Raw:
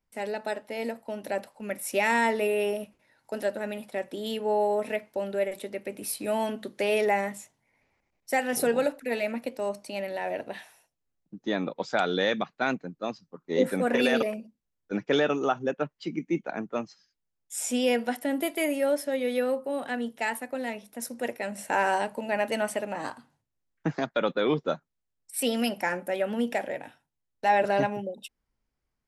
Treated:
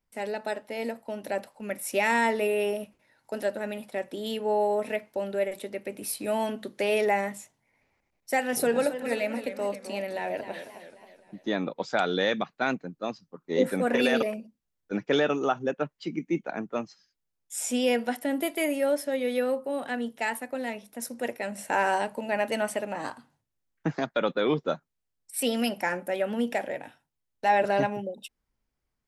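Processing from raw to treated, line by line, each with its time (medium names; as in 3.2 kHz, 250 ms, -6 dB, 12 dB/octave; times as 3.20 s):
8.44–11.49 s: modulated delay 264 ms, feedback 49%, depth 140 cents, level -11 dB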